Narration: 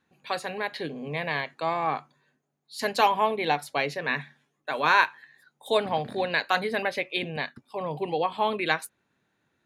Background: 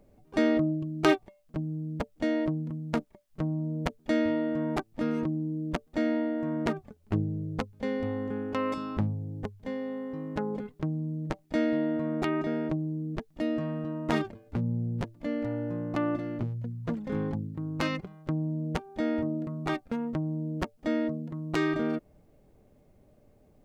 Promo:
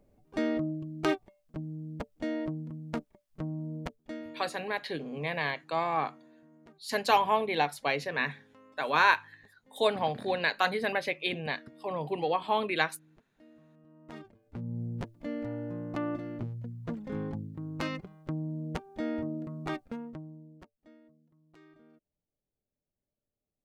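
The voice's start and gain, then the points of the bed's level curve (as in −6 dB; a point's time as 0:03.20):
4.10 s, −2.5 dB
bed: 0:03.76 −5.5 dB
0:04.75 −28 dB
0:13.72 −28 dB
0:14.81 −4.5 dB
0:19.84 −4.5 dB
0:21.01 −31 dB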